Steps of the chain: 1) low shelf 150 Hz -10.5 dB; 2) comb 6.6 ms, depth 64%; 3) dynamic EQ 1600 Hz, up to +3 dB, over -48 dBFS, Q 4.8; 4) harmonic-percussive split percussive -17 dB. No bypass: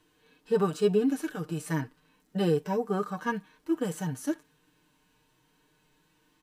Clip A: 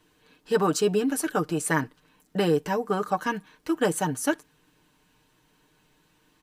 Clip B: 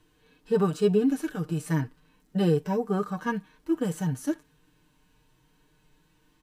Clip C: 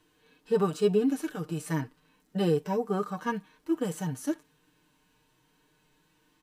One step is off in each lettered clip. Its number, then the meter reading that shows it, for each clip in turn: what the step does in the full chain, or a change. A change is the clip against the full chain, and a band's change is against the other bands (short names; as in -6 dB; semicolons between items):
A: 4, 8 kHz band +7.0 dB; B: 1, 125 Hz band +4.5 dB; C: 3, 2 kHz band -2.0 dB